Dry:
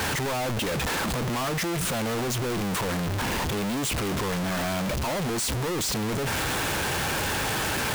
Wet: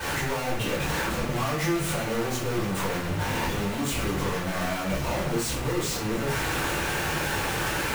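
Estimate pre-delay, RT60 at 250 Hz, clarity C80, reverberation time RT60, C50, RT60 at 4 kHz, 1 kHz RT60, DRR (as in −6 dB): 3 ms, 0.80 s, 7.0 dB, 0.55 s, 3.0 dB, 0.40 s, 0.55 s, −12.0 dB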